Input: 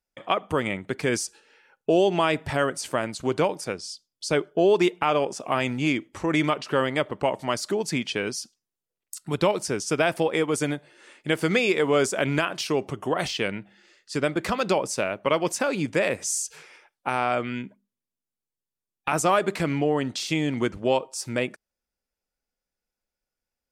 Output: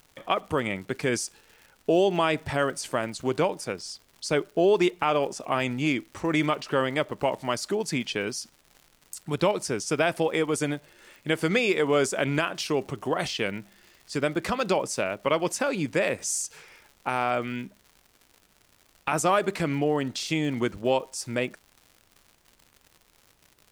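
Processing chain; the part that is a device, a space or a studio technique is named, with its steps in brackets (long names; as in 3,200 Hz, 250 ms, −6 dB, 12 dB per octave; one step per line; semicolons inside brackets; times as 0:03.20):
vinyl LP (surface crackle 140 per second −39 dBFS; pink noise bed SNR 38 dB)
level −1.5 dB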